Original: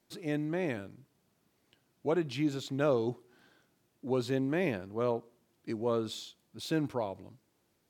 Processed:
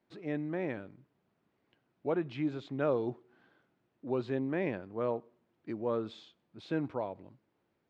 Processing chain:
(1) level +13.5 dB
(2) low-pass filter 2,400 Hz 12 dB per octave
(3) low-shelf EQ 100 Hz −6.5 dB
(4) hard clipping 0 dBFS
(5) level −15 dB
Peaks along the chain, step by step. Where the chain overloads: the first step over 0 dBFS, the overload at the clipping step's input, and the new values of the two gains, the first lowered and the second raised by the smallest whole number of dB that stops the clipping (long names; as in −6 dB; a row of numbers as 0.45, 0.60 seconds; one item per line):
−3.5, −3.5, −3.5, −3.5, −18.5 dBFS
no step passes full scale